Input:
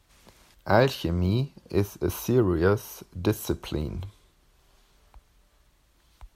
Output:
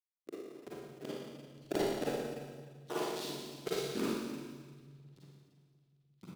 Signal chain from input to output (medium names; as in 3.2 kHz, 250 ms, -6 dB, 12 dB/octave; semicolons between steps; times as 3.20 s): comb filter that takes the minimum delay 1.7 ms; treble shelf 6.4 kHz +7 dB; in parallel at -1 dB: compression 8:1, threshold -40 dBFS, peak gain reduction 22 dB; on the sum: inverted gate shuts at -20 dBFS, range -36 dB; hysteresis with a dead band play -33 dBFS; decimation with a swept rate 36×, swing 100% 2 Hz; ring modulator 140 Hz; rotary cabinet horn 1.2 Hz, later 7.5 Hz, at 3.03 s; LFO high-pass square 5.7 Hz 360–3900 Hz; on a send: delay 301 ms -16.5 dB; on the sum: Schroeder reverb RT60 1.5 s, DRR -8.5 dB; trim +3 dB